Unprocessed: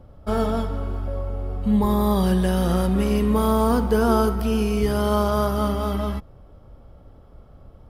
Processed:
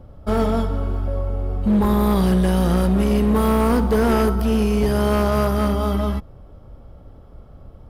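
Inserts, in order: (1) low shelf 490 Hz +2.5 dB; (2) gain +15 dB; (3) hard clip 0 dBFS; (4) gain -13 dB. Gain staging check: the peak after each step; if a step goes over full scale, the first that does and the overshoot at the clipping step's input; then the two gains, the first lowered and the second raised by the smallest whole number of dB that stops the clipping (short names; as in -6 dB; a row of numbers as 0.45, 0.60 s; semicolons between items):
-5.0, +10.0, 0.0, -13.0 dBFS; step 2, 10.0 dB; step 2 +5 dB, step 4 -3 dB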